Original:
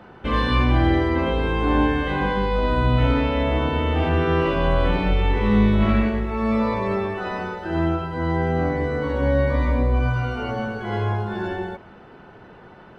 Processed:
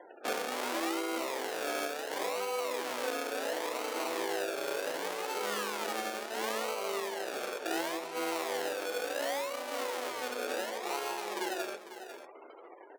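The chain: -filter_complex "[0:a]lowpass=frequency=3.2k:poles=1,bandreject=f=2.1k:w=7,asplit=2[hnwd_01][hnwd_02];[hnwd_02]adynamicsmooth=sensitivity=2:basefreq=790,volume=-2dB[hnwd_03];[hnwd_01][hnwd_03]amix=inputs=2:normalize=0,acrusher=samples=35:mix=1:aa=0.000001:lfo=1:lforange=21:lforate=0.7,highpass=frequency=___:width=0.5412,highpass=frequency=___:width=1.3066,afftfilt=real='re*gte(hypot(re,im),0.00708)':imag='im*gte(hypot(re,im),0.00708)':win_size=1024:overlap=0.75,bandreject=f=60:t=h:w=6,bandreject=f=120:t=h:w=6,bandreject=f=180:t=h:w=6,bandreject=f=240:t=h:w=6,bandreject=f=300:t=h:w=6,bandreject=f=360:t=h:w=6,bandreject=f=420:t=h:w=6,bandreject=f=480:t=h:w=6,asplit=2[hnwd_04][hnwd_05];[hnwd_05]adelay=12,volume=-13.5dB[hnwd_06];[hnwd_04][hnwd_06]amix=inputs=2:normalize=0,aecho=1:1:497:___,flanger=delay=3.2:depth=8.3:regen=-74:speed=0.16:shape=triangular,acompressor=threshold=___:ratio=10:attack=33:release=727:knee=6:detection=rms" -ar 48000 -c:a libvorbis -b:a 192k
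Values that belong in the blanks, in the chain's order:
380, 380, 0.158, -30dB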